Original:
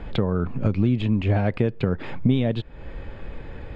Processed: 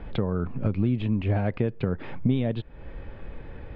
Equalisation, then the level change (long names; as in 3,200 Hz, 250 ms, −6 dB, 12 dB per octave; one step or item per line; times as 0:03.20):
high-frequency loss of the air 150 metres
−3.5 dB